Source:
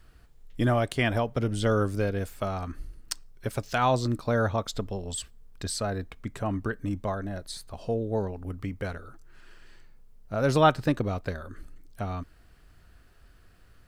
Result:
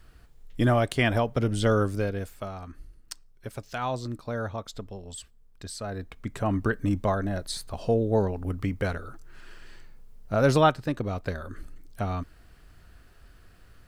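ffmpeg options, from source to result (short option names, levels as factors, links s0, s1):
-af "volume=12.6,afade=t=out:st=1.68:d=0.85:silence=0.375837,afade=t=in:st=5.78:d=0.94:silence=0.266073,afade=t=out:st=10.36:d=0.45:silence=0.298538,afade=t=in:st=10.81:d=0.7:silence=0.375837"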